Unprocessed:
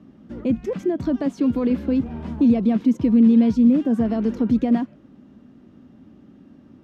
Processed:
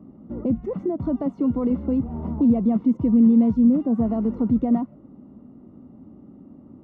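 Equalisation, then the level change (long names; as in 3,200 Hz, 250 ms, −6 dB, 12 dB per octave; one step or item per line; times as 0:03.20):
dynamic equaliser 380 Hz, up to −6 dB, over −30 dBFS, Q 0.75
Savitzky-Golay smoothing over 65 samples
+2.5 dB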